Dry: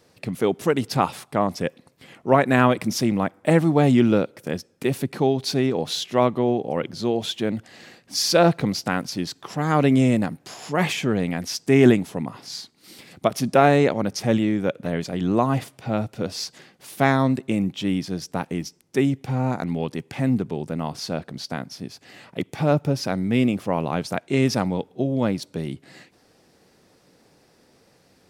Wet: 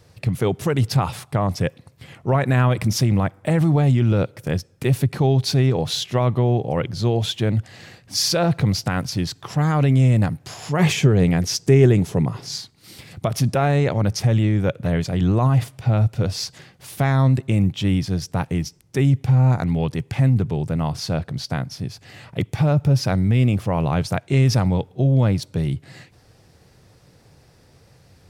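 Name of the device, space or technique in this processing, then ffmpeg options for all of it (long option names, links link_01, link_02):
car stereo with a boomy subwoofer: -filter_complex "[0:a]lowshelf=frequency=160:width_type=q:width=1.5:gain=11.5,alimiter=limit=-12.5dB:level=0:latency=1:release=40,asettb=1/sr,asplit=3[link_01][link_02][link_03];[link_01]atrim=end=10.794[link_04];[link_02]atrim=start=10.79:end=12.58,asetpts=PTS-STARTPTS,afade=type=in:duration=0.004:curve=qsin,afade=type=out:start_time=1.786:duration=0.004:curve=qsin,equalizer=frequency=160:width_type=o:width=0.67:gain=4,equalizer=frequency=400:width_type=o:width=0.67:gain=8,equalizer=frequency=6300:width_type=o:width=0.67:gain=4[link_05];[link_03]atrim=start=12.576[link_06];[link_04][link_05]acrossfade=duration=0.004:curve1=hsin:curve2=qsin[link_07];[link_07][link_06]acrossfade=duration=0.004:curve1=qsin:curve2=hsin,volume=2.5dB"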